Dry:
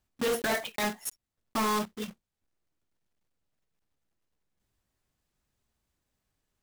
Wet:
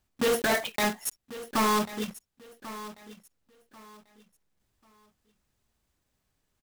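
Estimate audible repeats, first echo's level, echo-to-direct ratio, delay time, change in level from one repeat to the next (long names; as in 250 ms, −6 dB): 2, −15.5 dB, −15.0 dB, 1,091 ms, −11.5 dB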